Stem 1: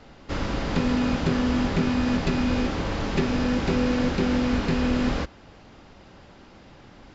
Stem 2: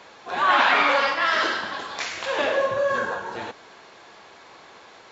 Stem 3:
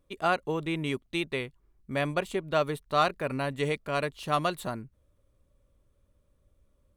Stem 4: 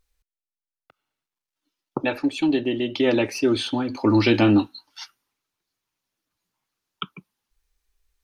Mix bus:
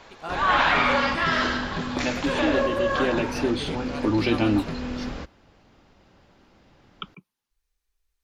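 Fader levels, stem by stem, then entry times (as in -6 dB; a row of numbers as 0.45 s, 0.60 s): -8.0 dB, -2.0 dB, -9.0 dB, -5.0 dB; 0.00 s, 0.00 s, 0.00 s, 0.00 s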